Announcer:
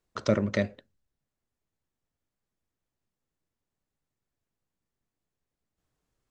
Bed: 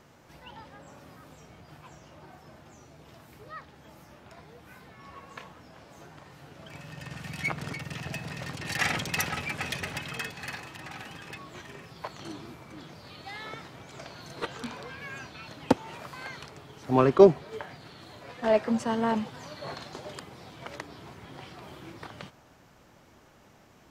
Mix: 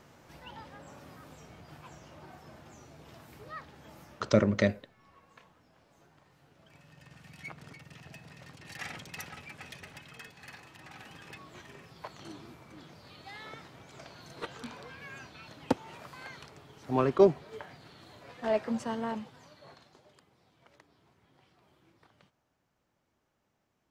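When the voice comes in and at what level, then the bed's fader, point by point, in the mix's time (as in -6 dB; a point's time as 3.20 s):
4.05 s, +1.0 dB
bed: 4.03 s -0.5 dB
4.80 s -13.5 dB
10.17 s -13.5 dB
11.25 s -5.5 dB
18.87 s -5.5 dB
20.11 s -20.5 dB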